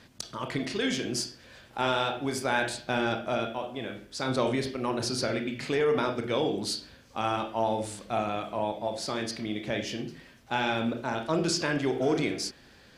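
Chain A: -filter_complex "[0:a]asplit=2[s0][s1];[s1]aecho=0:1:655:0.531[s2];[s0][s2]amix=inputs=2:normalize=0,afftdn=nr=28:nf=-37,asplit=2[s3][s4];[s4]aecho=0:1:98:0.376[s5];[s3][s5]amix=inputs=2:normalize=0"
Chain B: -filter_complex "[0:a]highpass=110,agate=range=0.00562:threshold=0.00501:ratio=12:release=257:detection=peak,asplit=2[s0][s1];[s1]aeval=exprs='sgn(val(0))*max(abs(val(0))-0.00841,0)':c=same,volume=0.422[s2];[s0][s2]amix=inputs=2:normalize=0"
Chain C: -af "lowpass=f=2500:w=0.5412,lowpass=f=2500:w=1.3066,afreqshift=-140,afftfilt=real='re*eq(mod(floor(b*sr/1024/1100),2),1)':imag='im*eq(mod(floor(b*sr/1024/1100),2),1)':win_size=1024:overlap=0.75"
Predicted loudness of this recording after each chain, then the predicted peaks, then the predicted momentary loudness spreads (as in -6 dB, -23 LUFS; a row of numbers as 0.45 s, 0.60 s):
-29.0 LUFS, -27.5 LUFS, -39.0 LUFS; -11.0 dBFS, -9.0 dBFS, -19.5 dBFS; 7 LU, 9 LU, 20 LU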